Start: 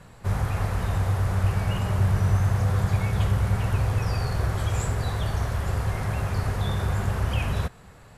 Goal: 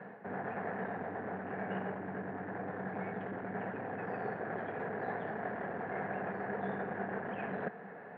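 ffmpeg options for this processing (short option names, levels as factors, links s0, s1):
-af "areverse,acompressor=threshold=0.0316:ratio=6,areverse,volume=35.5,asoftclip=hard,volume=0.0282,highpass=f=190:w=0.5412,highpass=f=190:w=1.3066,equalizer=f=200:t=q:w=4:g=7,equalizer=f=440:t=q:w=4:g=9,equalizer=f=720:t=q:w=4:g=9,equalizer=f=1200:t=q:w=4:g=-5,equalizer=f=1700:t=q:w=4:g=9,lowpass=f=2000:w=0.5412,lowpass=f=2000:w=1.3066"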